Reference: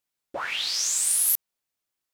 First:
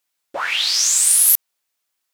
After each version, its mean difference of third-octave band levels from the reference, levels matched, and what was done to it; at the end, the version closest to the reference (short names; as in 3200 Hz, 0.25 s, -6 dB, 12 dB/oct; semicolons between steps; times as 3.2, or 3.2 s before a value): 2.5 dB: low shelf 400 Hz -12 dB; gain +9 dB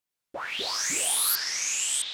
5.5 dB: echoes that change speed 0.106 s, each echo -6 st, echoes 2; gain -3.5 dB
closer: first